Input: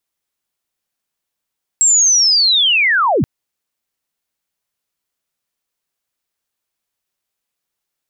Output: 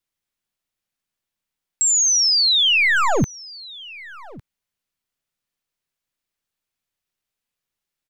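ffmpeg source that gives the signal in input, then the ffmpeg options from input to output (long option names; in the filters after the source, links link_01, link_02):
-f lavfi -i "aevalsrc='pow(10,(-8-3*t/1.43)/20)*sin(2*PI*(7700*t-7620*t*t/(2*1.43)))':duration=1.43:sample_rate=44100"
-filter_complex "[0:a]highshelf=frequency=3700:gain=-7,acrossover=split=250|1700[link_01][link_02][link_03];[link_02]aeval=exprs='max(val(0),0)':channel_layout=same[link_04];[link_01][link_04][link_03]amix=inputs=3:normalize=0,aecho=1:1:1155:0.0891"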